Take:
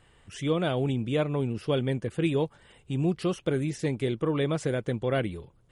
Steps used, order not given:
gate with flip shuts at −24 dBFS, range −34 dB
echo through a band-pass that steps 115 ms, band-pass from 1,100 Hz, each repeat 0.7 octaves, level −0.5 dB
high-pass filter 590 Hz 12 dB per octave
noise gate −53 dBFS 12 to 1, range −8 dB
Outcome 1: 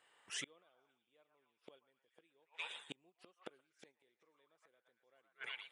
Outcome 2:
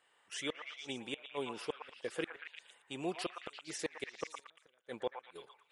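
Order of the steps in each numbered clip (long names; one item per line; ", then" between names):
echo through a band-pass that steps, then gate with flip, then noise gate, then high-pass filter
high-pass filter, then gate with flip, then noise gate, then echo through a band-pass that steps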